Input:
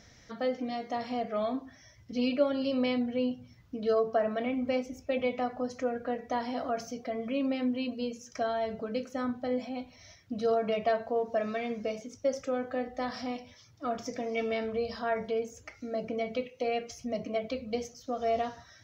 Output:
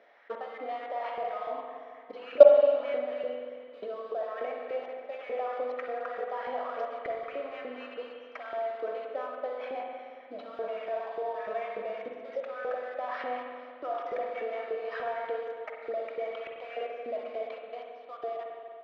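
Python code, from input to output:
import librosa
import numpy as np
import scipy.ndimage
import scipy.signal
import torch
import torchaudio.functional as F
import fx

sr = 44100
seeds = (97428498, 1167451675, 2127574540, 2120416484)

p1 = fx.fade_out_tail(x, sr, length_s=2.12)
p2 = scipy.signal.sosfilt(scipy.signal.butter(2, 290.0, 'highpass', fs=sr, output='sos'), p1)
p3 = fx.high_shelf_res(p2, sr, hz=4400.0, db=-12.0, q=1.5)
p4 = p3 + fx.echo_feedback(p3, sr, ms=65, feedback_pct=36, wet_db=-14.0, dry=0)
p5 = fx.level_steps(p4, sr, step_db=23)
p6 = fx.sample_hold(p5, sr, seeds[0], rate_hz=4200.0, jitter_pct=20)
p7 = p5 + (p6 * 10.0 ** (-7.5 / 20.0))
p8 = fx.filter_lfo_highpass(p7, sr, shape='saw_up', hz=3.4, low_hz=430.0, high_hz=1800.0, q=2.6)
p9 = fx.air_absorb(p8, sr, metres=280.0)
p10 = fx.rev_spring(p9, sr, rt60_s=2.2, pass_ms=(44, 56), chirp_ms=25, drr_db=1.0)
y = p10 * 10.0 ** (5.5 / 20.0)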